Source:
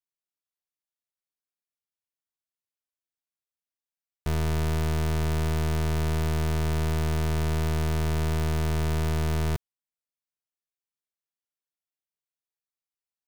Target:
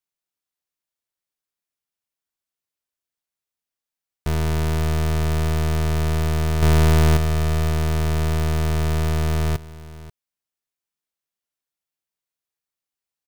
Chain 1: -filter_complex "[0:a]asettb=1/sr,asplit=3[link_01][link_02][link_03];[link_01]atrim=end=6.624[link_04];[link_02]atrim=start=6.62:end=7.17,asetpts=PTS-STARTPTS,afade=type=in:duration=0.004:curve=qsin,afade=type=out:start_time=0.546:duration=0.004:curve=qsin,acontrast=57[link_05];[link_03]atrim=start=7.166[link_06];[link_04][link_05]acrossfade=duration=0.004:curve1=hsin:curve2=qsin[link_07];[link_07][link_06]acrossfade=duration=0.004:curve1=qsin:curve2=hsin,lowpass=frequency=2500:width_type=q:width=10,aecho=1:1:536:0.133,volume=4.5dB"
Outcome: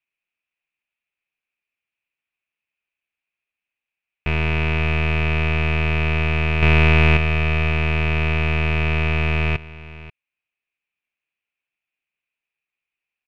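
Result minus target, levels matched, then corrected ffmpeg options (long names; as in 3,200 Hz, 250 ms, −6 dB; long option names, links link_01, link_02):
2,000 Hz band +9.5 dB
-filter_complex "[0:a]asettb=1/sr,asplit=3[link_01][link_02][link_03];[link_01]atrim=end=6.624[link_04];[link_02]atrim=start=6.62:end=7.17,asetpts=PTS-STARTPTS,afade=type=in:duration=0.004:curve=qsin,afade=type=out:start_time=0.546:duration=0.004:curve=qsin,acontrast=57[link_05];[link_03]atrim=start=7.166[link_06];[link_04][link_05]acrossfade=duration=0.004:curve1=hsin:curve2=qsin[link_07];[link_07][link_06]acrossfade=duration=0.004:curve1=qsin:curve2=hsin,aecho=1:1:536:0.133,volume=4.5dB"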